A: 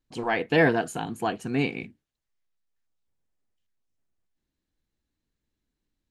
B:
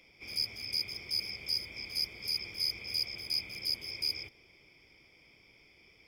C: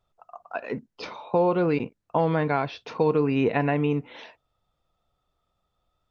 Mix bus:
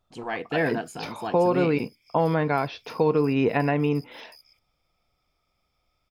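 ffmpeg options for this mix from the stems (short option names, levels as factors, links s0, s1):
-filter_complex "[0:a]volume=0.562[s0];[1:a]aderivative,acompressor=threshold=0.0126:ratio=6,adelay=300,volume=0.266[s1];[2:a]volume=1.06[s2];[s0][s1][s2]amix=inputs=3:normalize=0"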